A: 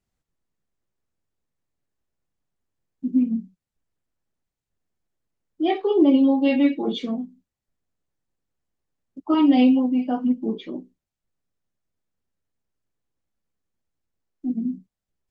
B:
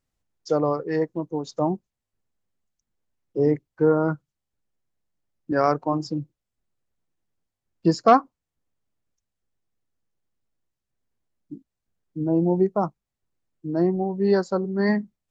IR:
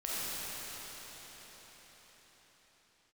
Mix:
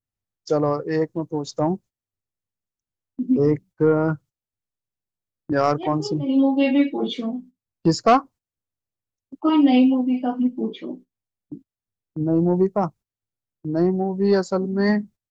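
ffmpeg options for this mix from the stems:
-filter_complex "[0:a]highpass=f=140:p=1,adelay=150,volume=1.5dB[a];[1:a]equalizer=f=100:t=o:w=0.6:g=10,acontrast=65,adynamicequalizer=threshold=0.01:dfrequency=3800:dqfactor=0.7:tfrequency=3800:tqfactor=0.7:attack=5:release=100:ratio=0.375:range=2.5:mode=boostabove:tftype=highshelf,volume=-4.5dB,asplit=2[b][c];[c]apad=whole_len=681471[d];[a][d]sidechaincompress=threshold=-37dB:ratio=10:attack=16:release=155[e];[e][b]amix=inputs=2:normalize=0,agate=range=-15dB:threshold=-41dB:ratio=16:detection=peak"

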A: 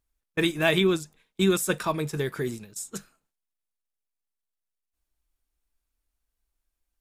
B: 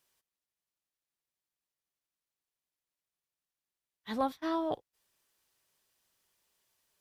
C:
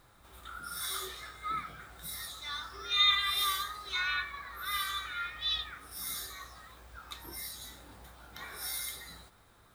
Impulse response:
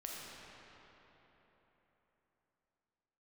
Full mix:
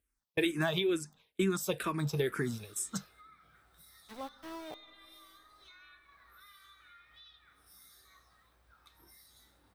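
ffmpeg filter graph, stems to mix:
-filter_complex "[0:a]highpass=50,acompressor=threshold=-26dB:ratio=6,asplit=2[a][b];[b]afreqshift=-2.2[c];[a][c]amix=inputs=2:normalize=1,volume=1.5dB[d];[1:a]aeval=exprs='val(0)*gte(abs(val(0)),0.0188)':c=same,volume=-12.5dB,asplit=2[e][f];[f]volume=-16.5dB[g];[2:a]acompressor=threshold=-41dB:ratio=5,adelay=1750,volume=-16.5dB,asplit=2[h][i];[i]volume=-11dB[j];[3:a]atrim=start_sample=2205[k];[g][j]amix=inputs=2:normalize=0[l];[l][k]afir=irnorm=-1:irlink=0[m];[d][e][h][m]amix=inputs=4:normalize=0,bandreject=f=7k:w=9.6"

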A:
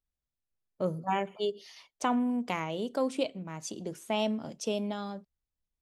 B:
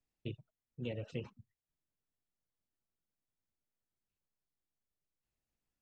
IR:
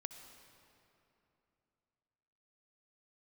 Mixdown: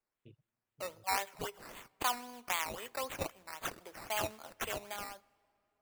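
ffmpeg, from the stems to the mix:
-filter_complex "[0:a]highpass=1.1k,acrusher=samples=11:mix=1:aa=0.000001:lfo=1:lforange=6.6:lforate=3.8,volume=1dB,asplit=3[a][b][c];[b]volume=-16dB[d];[1:a]highshelf=f=4.1k:g=-11,volume=-16.5dB,asplit=2[e][f];[f]volume=-22dB[g];[c]apad=whole_len=256539[h];[e][h]sidechaincompress=threshold=-53dB:ratio=8:attack=16:release=169[i];[2:a]atrim=start_sample=2205[j];[d][g]amix=inputs=2:normalize=0[k];[k][j]afir=irnorm=-1:irlink=0[l];[a][i][l]amix=inputs=3:normalize=0,highshelf=f=7.8k:g=5.5"

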